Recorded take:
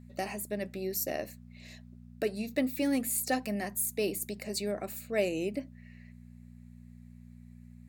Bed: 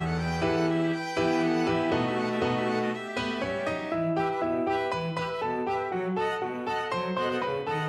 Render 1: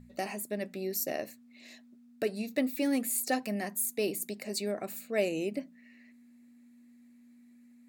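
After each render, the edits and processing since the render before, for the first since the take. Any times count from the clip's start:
hum removal 60 Hz, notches 3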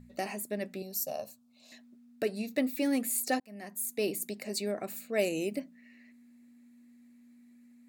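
0:00.82–0:01.72: phaser with its sweep stopped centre 810 Hz, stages 4
0:03.40–0:04.03: fade in
0:05.19–0:05.60: parametric band 15,000 Hz +9.5 dB 1.5 octaves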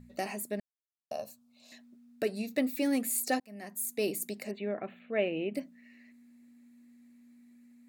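0:00.60–0:01.11: silence
0:04.51–0:05.55: elliptic low-pass filter 3,300 Hz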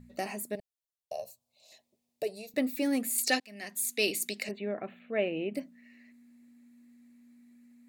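0:00.55–0:02.54: phaser with its sweep stopped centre 600 Hz, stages 4
0:03.18–0:04.49: meter weighting curve D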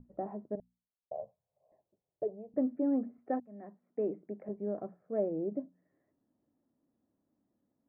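Bessel low-pass filter 710 Hz, order 8
mains-hum notches 60/120/180/240 Hz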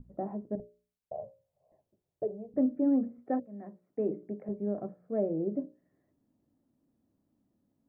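low-shelf EQ 240 Hz +10 dB
mains-hum notches 60/120/180/240/300/360/420/480/540/600 Hz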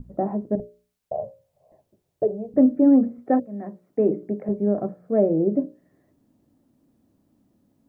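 level +11 dB

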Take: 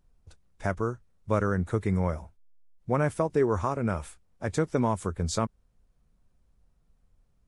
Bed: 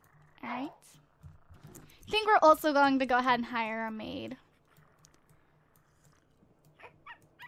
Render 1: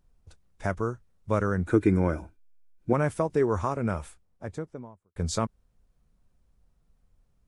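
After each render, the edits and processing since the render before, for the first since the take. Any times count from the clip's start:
0:01.67–0:02.93: hollow resonant body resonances 310/1,500/2,400 Hz, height 16 dB
0:03.83–0:05.16: fade out and dull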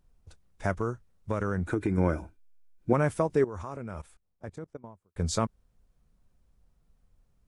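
0:00.74–0:01.98: downward compressor, threshold −23 dBFS
0:03.44–0:04.84: output level in coarse steps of 19 dB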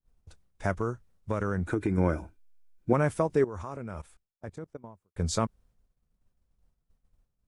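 downward expander −57 dBFS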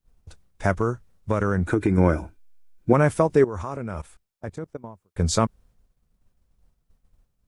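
level +7 dB
brickwall limiter −3 dBFS, peak gain reduction 1.5 dB

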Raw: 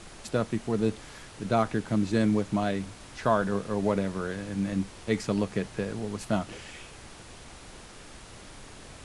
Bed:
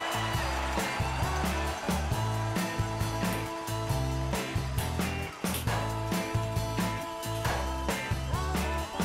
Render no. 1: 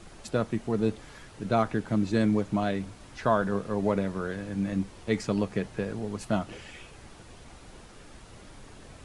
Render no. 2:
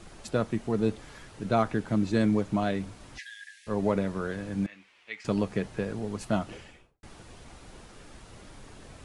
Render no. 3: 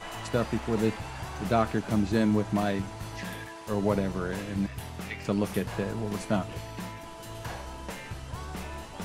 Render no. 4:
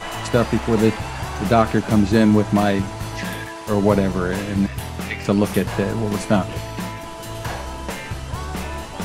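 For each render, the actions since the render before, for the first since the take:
broadband denoise 6 dB, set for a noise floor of −48 dBFS
0:03.18–0:03.67: linear-phase brick-wall high-pass 1,600 Hz; 0:04.66–0:05.25: resonant band-pass 2,400 Hz, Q 2.3; 0:06.47–0:07.03: fade out and dull
mix in bed −8 dB
level +10 dB; brickwall limiter −3 dBFS, peak gain reduction 2 dB

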